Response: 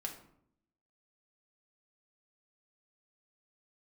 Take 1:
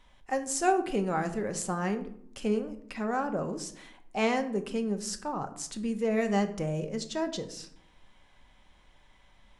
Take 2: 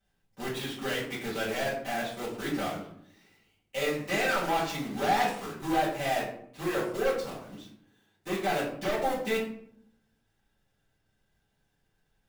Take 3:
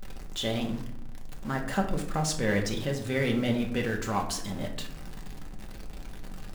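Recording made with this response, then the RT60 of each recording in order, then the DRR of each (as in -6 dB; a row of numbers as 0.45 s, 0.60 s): 3; 0.70 s, 0.70 s, 0.70 s; 6.5 dB, -9.0 dB, 1.0 dB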